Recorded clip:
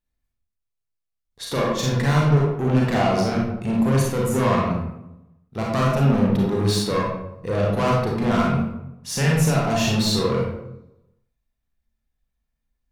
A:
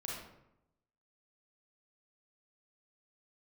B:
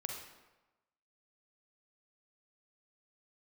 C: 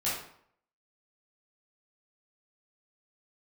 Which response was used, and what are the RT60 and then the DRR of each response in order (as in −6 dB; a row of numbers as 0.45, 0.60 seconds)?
A; 0.85, 1.1, 0.65 seconds; −4.0, 1.5, −9.5 decibels